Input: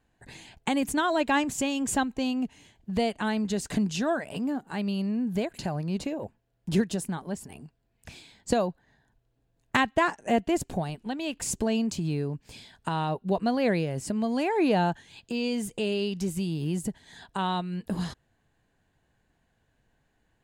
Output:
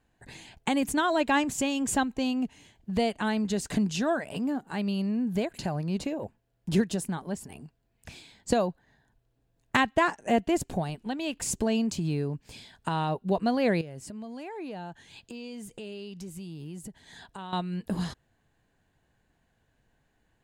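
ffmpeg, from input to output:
-filter_complex "[0:a]asettb=1/sr,asplit=3[s0][s1][s2];[s0]atrim=end=13.814[s3];[s1]atrim=start=13.81:end=17.53,asetpts=PTS-STARTPTS,afade=t=in:d=0.004:c=qsin,afade=t=out:st=3.716:d=0.004:c=qsin,acompressor=threshold=0.00708:ratio=2.5:attack=3.2:release=140:knee=1:detection=peak[s4];[s2]atrim=start=17.526[s5];[s3][s4]acrossfade=d=0.004:c1=hsin:c2=qsin[s6];[s6][s5]acrossfade=d=0.004:c1=qsin:c2=hsin"

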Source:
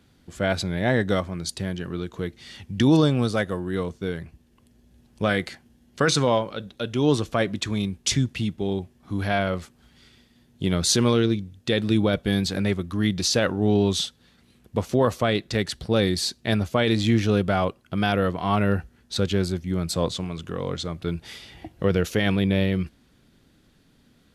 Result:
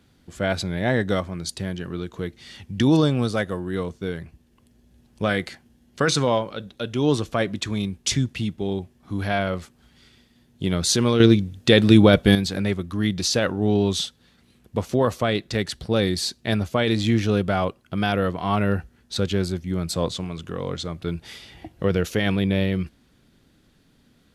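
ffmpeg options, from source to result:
-filter_complex "[0:a]asplit=3[s0][s1][s2];[s0]atrim=end=11.202[s3];[s1]atrim=start=11.198:end=12.352,asetpts=PTS-STARTPTS,volume=2.51[s4];[s2]atrim=start=12.348[s5];[s3][s4]acrossfade=d=0.004:c1=hsin:c2=hsin[s6];[s6][s5]acrossfade=d=0.004:c1=hsin:c2=hsin"

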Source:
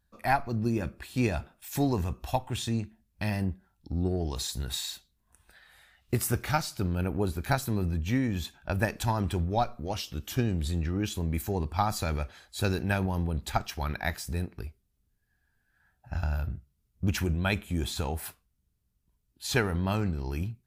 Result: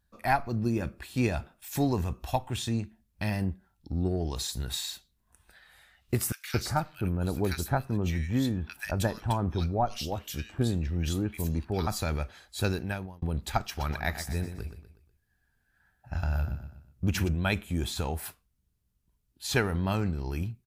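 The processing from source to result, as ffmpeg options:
-filter_complex "[0:a]asettb=1/sr,asplit=3[s0][s1][s2];[s0]atrim=end=6.324[s3];[s1]atrim=start=6.32:end=11.87,asetpts=PTS-STARTPTS,afade=t=in:d=0.004:c=qsin,afade=t=out:st=5.546:d=0.004:c=qsin,acrossover=split=1700[s4][s5];[s4]adelay=220[s6];[s6][s5]amix=inputs=2:normalize=0,atrim=end_sample=244755[s7];[s2]atrim=start=11.866[s8];[s3][s7]acrossfade=d=0.004:c1=hsin:c2=qsin[s9];[s9][s8]acrossfade=d=0.004:c1=qsin:c2=hsin,asplit=3[s10][s11][s12];[s10]afade=t=out:st=13.74:d=0.02[s13];[s11]aecho=1:1:122|244|366|488:0.316|0.133|0.0558|0.0234,afade=t=in:st=13.74:d=0.02,afade=t=out:st=17.27:d=0.02[s14];[s12]afade=t=in:st=17.27:d=0.02[s15];[s13][s14][s15]amix=inputs=3:normalize=0,asplit=2[s16][s17];[s16]atrim=end=13.22,asetpts=PTS-STARTPTS,afade=t=out:st=12.65:d=0.57[s18];[s17]atrim=start=13.22,asetpts=PTS-STARTPTS,afade=t=in:d=0.004:c=hsin[s19];[s18][s19]concat=n=2:v=0:a=1"

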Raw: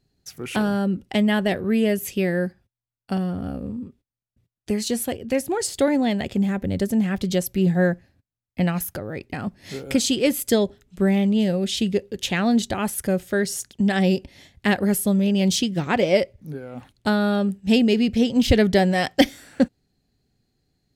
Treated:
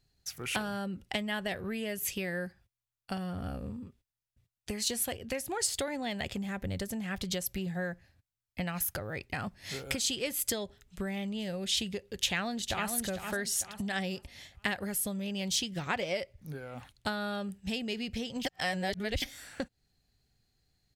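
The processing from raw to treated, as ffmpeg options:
-filter_complex "[0:a]asplit=2[s0][s1];[s1]afade=t=in:st=12.03:d=0.01,afade=t=out:st=12.91:d=0.01,aecho=0:1:450|900|1350|1800:0.398107|0.119432|0.0358296|0.0107489[s2];[s0][s2]amix=inputs=2:normalize=0,asplit=3[s3][s4][s5];[s3]atrim=end=18.452[s6];[s4]atrim=start=18.448:end=19.222,asetpts=PTS-STARTPTS,areverse[s7];[s5]atrim=start=19.218[s8];[s6][s7]acrossfade=d=0.004:c1=hsin:c2=hsin[s9];[s9][s8]acrossfade=d=0.004:c1=hsin:c2=hsin,acompressor=threshold=0.0631:ratio=6,equalizer=f=280:w=0.58:g=-11.5"

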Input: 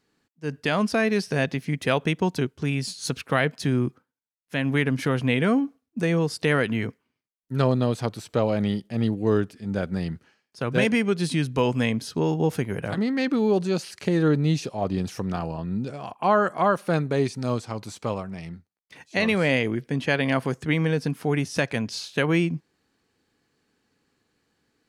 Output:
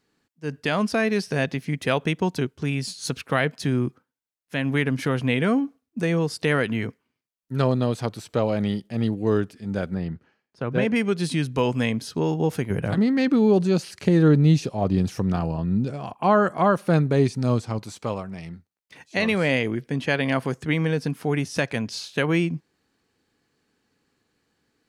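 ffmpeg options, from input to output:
-filter_complex "[0:a]asettb=1/sr,asplit=3[s0][s1][s2];[s0]atrim=end=9.944[s3];[s1]atrim=start=9.94:end=10.96,asetpts=PTS-STARTPTS,afade=t=in:d=0.004:c=qsin,afade=t=out:st=1.016:d=0.004:c=qsin,lowpass=f=1500:p=1[s4];[s2]atrim=start=10.956[s5];[s3][s4]acrossfade=d=0.004:c1=hsin:c2=qsin[s6];[s6][s5]acrossfade=d=0.004:c1=qsin:c2=hsin,asettb=1/sr,asplit=3[s7][s8][s9];[s7]atrim=end=12.704[s10];[s8]atrim=start=12.7:end=17.79,asetpts=PTS-STARTPTS,afade=t=in:d=0.004:c=qsin,afade=t=out:st=5.086:d=0.004:c=qsin,lowshelf=f=300:g=7.5[s11];[s9]atrim=start=17.786[s12];[s10][s11]acrossfade=d=0.004:c1=hsin:c2=qsin[s13];[s13][s12]acrossfade=d=0.004:c1=qsin:c2=hsin"

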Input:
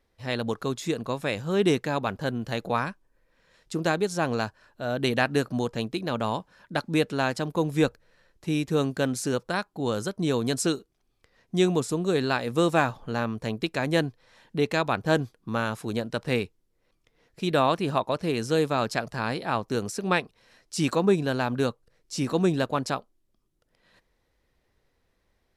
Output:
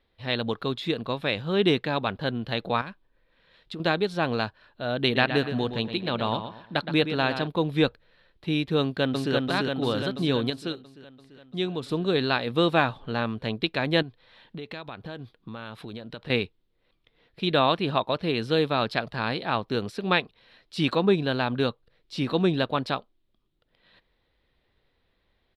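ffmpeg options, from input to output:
-filter_complex "[0:a]asettb=1/sr,asplit=3[s0][s1][s2];[s0]atrim=end=2.814[s3];[s1]atrim=start=2.81:end=3.8,asetpts=PTS-STARTPTS,afade=t=in:d=0.004:c=qsin,afade=t=out:st=0.986:d=0.004:c=qsin,acompressor=threshold=0.0224:ratio=6:attack=3.2:release=140:knee=1:detection=peak[s4];[s2]atrim=start=3.796[s5];[s3][s4]acrossfade=d=0.004:c1=hsin:c2=qsin[s6];[s6][s5]acrossfade=d=0.004:c1=qsin:c2=hsin,asettb=1/sr,asplit=3[s7][s8][s9];[s7]atrim=end=5.034[s10];[s8]atrim=start=5.03:end=7.47,asetpts=PTS-STARTPTS,afade=t=in:d=0.004:c=qsin,afade=t=out:st=2.436:d=0.004:c=qsin,asplit=2[s11][s12];[s12]adelay=118,lowpass=f=4800:p=1,volume=0.355,asplit=2[s13][s14];[s14]adelay=118,lowpass=f=4800:p=1,volume=0.32,asplit=2[s15][s16];[s16]adelay=118,lowpass=f=4800:p=1,volume=0.32,asplit=2[s17][s18];[s18]adelay=118,lowpass=f=4800:p=1,volume=0.32[s19];[s11][s13][s15][s17][s19]amix=inputs=5:normalize=0,atrim=end_sample=107604[s20];[s9]atrim=start=7.466[s21];[s10][s20]acrossfade=d=0.004:c1=hsin:c2=qsin[s22];[s22][s21]acrossfade=d=0.004:c1=qsin:c2=hsin,asplit=2[s23][s24];[s24]afade=t=in:st=8.8:d=0.01,afade=t=out:st=9.34:d=0.01,aecho=0:1:340|680|1020|1360|1700|2040|2380|2720|3060|3400|3740|4080:0.794328|0.55603|0.389221|0.272455|0.190718|0.133503|0.0934519|0.0654163|0.0457914|0.032054|0.0224378|0.0157065[s25];[s23][s25]amix=inputs=2:normalize=0,asettb=1/sr,asplit=3[s26][s27][s28];[s26]atrim=end=14.024[s29];[s27]atrim=start=14.02:end=16.3,asetpts=PTS-STARTPTS,afade=t=in:d=0.004:c=qsin,afade=t=out:st=2.276:d=0.004:c=qsin,acompressor=threshold=0.0178:ratio=6:attack=3.2:release=140:knee=1:detection=peak[s30];[s28]atrim=start=16.296[s31];[s29][s30]acrossfade=d=0.004:c1=hsin:c2=qsin[s32];[s32][s31]acrossfade=d=0.004:c1=qsin:c2=hsin,asplit=3[s33][s34][s35];[s33]atrim=end=10.502[s36];[s34]atrim=start=10.498:end=11.832,asetpts=PTS-STARTPTS,volume=0.447[s37];[s35]atrim=start=11.828[s38];[s36][s37]acrossfade=d=0.004:c1=hsin:c2=hsin[s39];[s39][s38]acrossfade=d=0.004:c1=hsin:c2=hsin,highshelf=f=5000:t=q:w=3:g=-11"

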